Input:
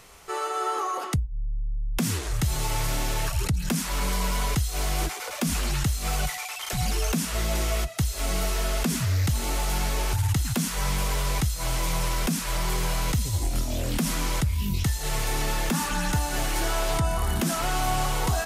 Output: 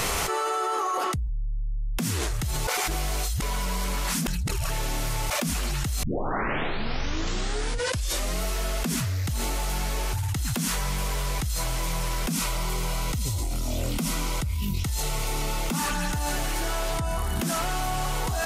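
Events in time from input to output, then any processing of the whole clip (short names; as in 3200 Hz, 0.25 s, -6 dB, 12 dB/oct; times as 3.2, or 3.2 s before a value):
2.67–5.3 reverse
6.03 tape start 2.41 s
12.32–15.79 Butterworth band-stop 1700 Hz, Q 6.5
whole clip: fast leveller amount 100%; gain -6.5 dB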